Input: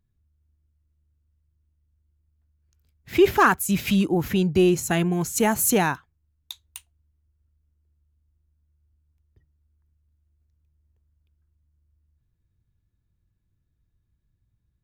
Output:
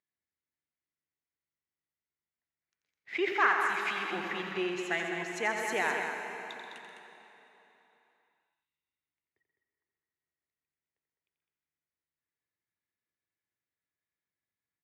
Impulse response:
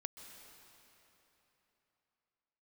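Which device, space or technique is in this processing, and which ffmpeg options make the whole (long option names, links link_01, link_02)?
station announcement: -filter_complex "[0:a]highpass=490,lowpass=4200,equalizer=frequency=2000:width_type=o:width=0.44:gain=11.5,aecho=1:1:87.46|131.2|207:0.398|0.282|0.447[link_01];[1:a]atrim=start_sample=2205[link_02];[link_01][link_02]afir=irnorm=-1:irlink=0,asettb=1/sr,asplit=3[link_03][link_04][link_05];[link_03]atrim=end=3.324[link_06];[link_04]atrim=start=3.32:end=4.13,asetpts=PTS-STARTPTS,afade=type=in:duration=0.004:curve=qsin,afade=type=out:start_time=0.806:duration=0.004:curve=qsin,lowshelf=frequency=320:gain=-8[link_07];[link_05]atrim=start=4.126[link_08];[link_06][link_07]acrossfade=duration=0.004:curve1=hsin:curve2=qsin[link_09];[link_09][link_08]acrossfade=duration=0.004:curve1=qsin:curve2=hsin,volume=-5.5dB"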